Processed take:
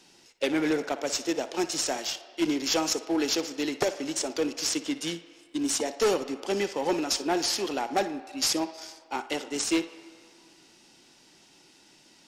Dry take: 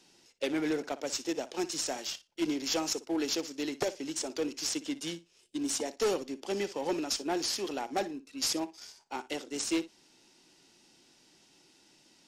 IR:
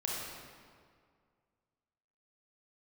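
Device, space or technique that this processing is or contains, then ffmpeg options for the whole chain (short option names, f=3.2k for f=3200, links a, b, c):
filtered reverb send: -filter_complex "[0:a]asplit=2[a][b];[b]highpass=590,lowpass=3.3k[c];[1:a]atrim=start_sample=2205[d];[c][d]afir=irnorm=-1:irlink=0,volume=-13dB[e];[a][e]amix=inputs=2:normalize=0,volume=5dB"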